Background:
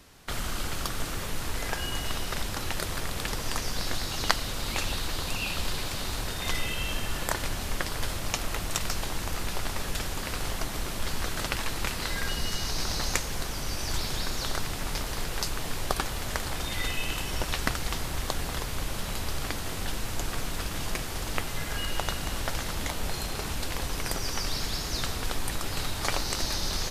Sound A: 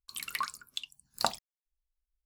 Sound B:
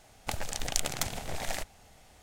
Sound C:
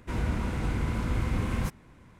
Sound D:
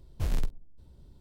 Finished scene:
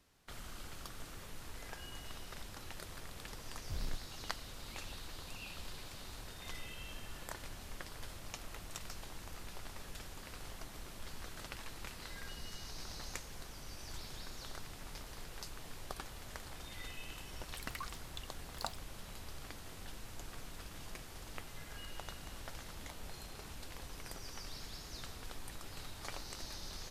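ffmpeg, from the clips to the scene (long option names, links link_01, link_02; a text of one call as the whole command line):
ffmpeg -i bed.wav -i cue0.wav -i cue1.wav -i cue2.wav -i cue3.wav -filter_complex "[0:a]volume=-16.5dB[link_01];[4:a]atrim=end=1.2,asetpts=PTS-STARTPTS,volume=-12dB,afade=type=in:duration=0.004:curve=hsin,afade=type=out:start_time=1.196:duration=0.004:curve=hsin,adelay=3500[link_02];[1:a]atrim=end=2.25,asetpts=PTS-STARTPTS,volume=-12dB,afade=type=in:duration=0.004:curve=hsin,afade=type=out:start_time=2.246:duration=0.004:curve=hsin,adelay=17400[link_03];[link_01][link_02][link_03]amix=inputs=3:normalize=0" out.wav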